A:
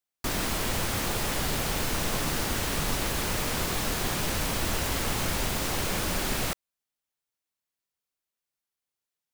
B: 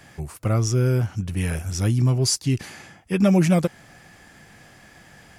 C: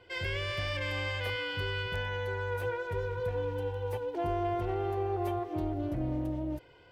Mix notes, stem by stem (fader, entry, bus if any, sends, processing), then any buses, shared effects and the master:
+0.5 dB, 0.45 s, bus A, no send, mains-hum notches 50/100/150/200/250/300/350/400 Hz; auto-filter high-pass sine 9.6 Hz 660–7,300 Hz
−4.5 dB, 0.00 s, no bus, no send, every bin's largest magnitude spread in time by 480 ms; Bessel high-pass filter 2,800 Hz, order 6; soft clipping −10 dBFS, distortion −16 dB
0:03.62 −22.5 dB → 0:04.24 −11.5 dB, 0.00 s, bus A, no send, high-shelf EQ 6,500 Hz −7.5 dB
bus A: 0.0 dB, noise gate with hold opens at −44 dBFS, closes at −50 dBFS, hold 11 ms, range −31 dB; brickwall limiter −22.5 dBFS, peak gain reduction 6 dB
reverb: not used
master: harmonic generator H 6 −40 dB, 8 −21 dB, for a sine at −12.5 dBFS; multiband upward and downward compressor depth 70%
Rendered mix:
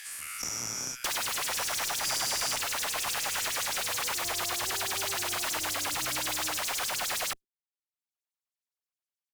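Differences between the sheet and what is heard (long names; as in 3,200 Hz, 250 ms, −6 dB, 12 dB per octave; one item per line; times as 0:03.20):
stem A: entry 0.45 s → 0.80 s
stem B −4.5 dB → −13.0 dB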